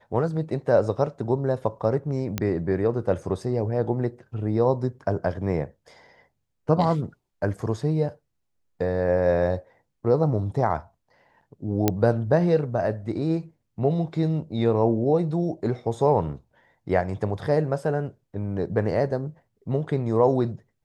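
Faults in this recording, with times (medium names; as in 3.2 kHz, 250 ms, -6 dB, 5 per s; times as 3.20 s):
2.38 s: pop -10 dBFS
11.88 s: pop -5 dBFS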